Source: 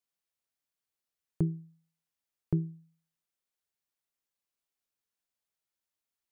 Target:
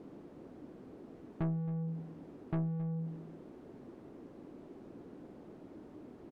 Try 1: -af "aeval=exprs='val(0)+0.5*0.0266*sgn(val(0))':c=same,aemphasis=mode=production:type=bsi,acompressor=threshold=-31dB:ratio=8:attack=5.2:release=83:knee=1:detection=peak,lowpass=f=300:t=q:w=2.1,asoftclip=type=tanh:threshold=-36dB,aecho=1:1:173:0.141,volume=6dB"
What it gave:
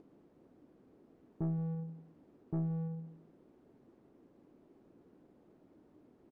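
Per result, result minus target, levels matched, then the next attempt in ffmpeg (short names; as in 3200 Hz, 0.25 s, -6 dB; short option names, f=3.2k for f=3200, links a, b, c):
compressor: peak gain reduction +13 dB; echo 97 ms early
-af "aeval=exprs='val(0)+0.5*0.0266*sgn(val(0))':c=same,lowpass=f=300:t=q:w=2.1,aemphasis=mode=production:type=bsi,asoftclip=type=tanh:threshold=-36dB,aecho=1:1:173:0.141,volume=6dB"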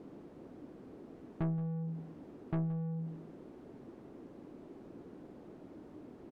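echo 97 ms early
-af "aeval=exprs='val(0)+0.5*0.0266*sgn(val(0))':c=same,lowpass=f=300:t=q:w=2.1,aemphasis=mode=production:type=bsi,asoftclip=type=tanh:threshold=-36dB,aecho=1:1:270:0.141,volume=6dB"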